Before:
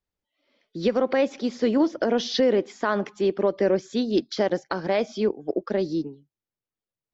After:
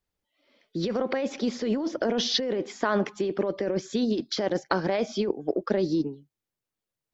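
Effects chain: compressor with a negative ratio -25 dBFS, ratio -1

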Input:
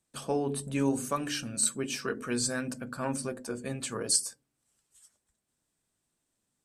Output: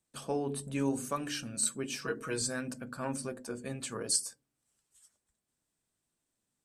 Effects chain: 2.01–2.42 s: comb 6.3 ms, depth 69%; trim -3.5 dB

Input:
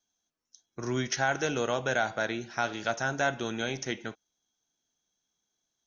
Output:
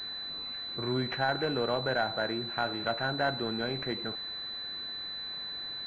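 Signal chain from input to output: jump at every zero crossing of -39.5 dBFS; class-D stage that switches slowly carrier 4 kHz; trim -1.5 dB

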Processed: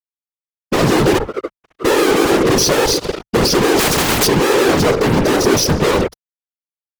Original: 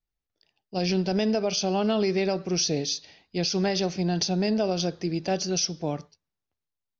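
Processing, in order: recorder AGC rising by 12 dB/s; 1.17–1.85 s: gate -18 dBFS, range -39 dB; FFT filter 120 Hz 0 dB, 280 Hz -19 dB, 420 Hz +10 dB, 720 Hz -21 dB; Chebyshev shaper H 4 -22 dB, 8 -21 dB, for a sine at -12.5 dBFS; in parallel at -3 dB: compression, threshold -35 dBFS, peak gain reduction 17 dB; on the sum: fuzz box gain 51 dB, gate -56 dBFS; whisper effect; 3.79–4.27 s: spectrum-flattening compressor 2:1; trim +1 dB

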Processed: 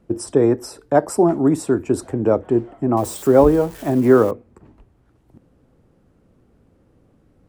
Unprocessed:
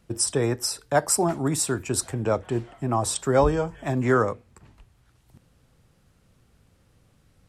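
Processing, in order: 2.97–4.31 s: zero-crossing glitches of -21.5 dBFS; FFT filter 140 Hz 0 dB, 300 Hz +10 dB, 4 kHz -11 dB; trim +2 dB

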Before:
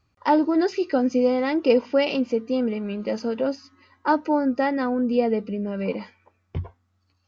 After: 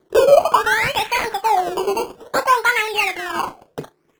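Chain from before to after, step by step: overdrive pedal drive 15 dB, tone 3.5 kHz, clips at -7 dBFS; in parallel at +1 dB: compression, threshold -28 dBFS, peak gain reduction 15 dB; on the sum: treble shelf 3.8 kHz +10 dB; decimation with a swept rate 28×, swing 100% 0.37 Hz; on a send: feedback delay 61 ms, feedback 16%, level -12 dB; on the sum: speed mistake 45 rpm record played at 78 rpm; sweeping bell 0.5 Hz 350–2600 Hz +17 dB; trim -8.5 dB

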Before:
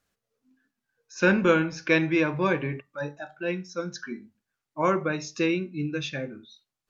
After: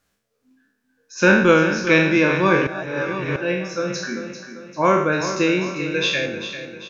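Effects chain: spectral sustain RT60 0.72 s; 5.74–6.26 s: graphic EQ 125/250/500/1000/2000/4000 Hz -6/-6/+6/-12/+9/+4 dB; feedback delay 394 ms, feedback 47%, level -10.5 dB; 2.67–3.36 s: reverse; trim +5 dB

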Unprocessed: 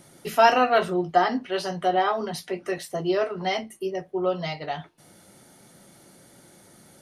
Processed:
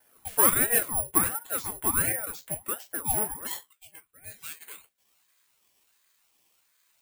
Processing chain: low-pass 6.2 kHz; expander -51 dBFS; Chebyshev high-pass 320 Hz, order 2, from 3.46 s 1.9 kHz; careless resampling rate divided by 4×, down filtered, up zero stuff; ring modulator with a swept carrier 700 Hz, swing 70%, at 1.4 Hz; trim -6.5 dB

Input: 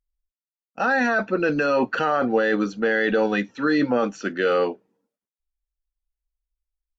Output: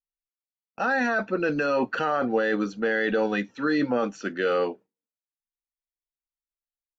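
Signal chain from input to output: gate with hold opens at -38 dBFS; trim -3.5 dB

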